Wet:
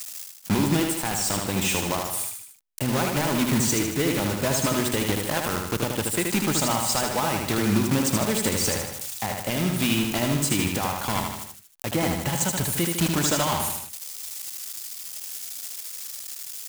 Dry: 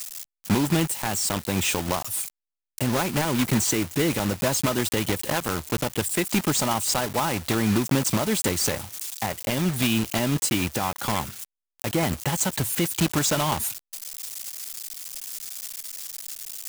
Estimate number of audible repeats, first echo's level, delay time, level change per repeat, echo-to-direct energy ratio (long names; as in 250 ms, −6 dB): 4, −4.0 dB, 77 ms, −5.5 dB, −2.5 dB